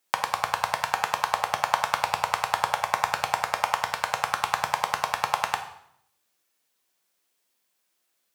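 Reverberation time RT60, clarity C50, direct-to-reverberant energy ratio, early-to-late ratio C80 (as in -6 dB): 0.70 s, 9.5 dB, 4.5 dB, 12.5 dB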